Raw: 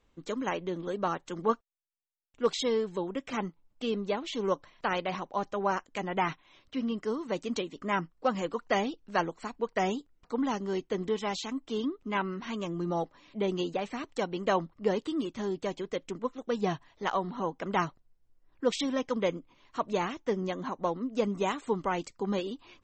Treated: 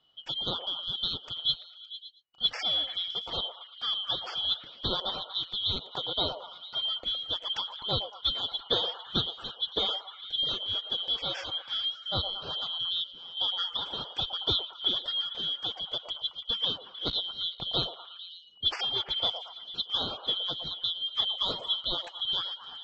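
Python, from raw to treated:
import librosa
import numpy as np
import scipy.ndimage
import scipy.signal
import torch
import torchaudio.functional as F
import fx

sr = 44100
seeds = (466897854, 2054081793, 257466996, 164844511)

y = fx.band_shuffle(x, sr, order='2413')
y = scipy.signal.sosfilt(scipy.signal.butter(2, 2800.0, 'lowpass', fs=sr, output='sos'), y)
y = fx.echo_stepped(y, sr, ms=113, hz=690.0, octaves=0.7, feedback_pct=70, wet_db=-5.0)
y = y * librosa.db_to_amplitude(4.0)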